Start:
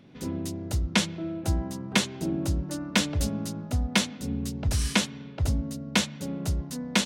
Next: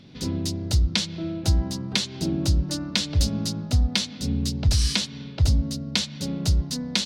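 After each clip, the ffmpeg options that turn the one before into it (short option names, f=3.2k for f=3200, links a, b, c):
-af "equalizer=f=4.5k:t=o:w=1.2:g=14.5,acompressor=threshold=-22dB:ratio=5,lowshelf=f=180:g=10"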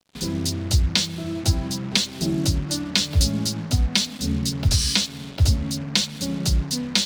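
-af "flanger=delay=3.5:depth=8.8:regen=-41:speed=0.48:shape=triangular,highshelf=f=4.9k:g=5.5,acrusher=bits=6:mix=0:aa=0.5,volume=5.5dB"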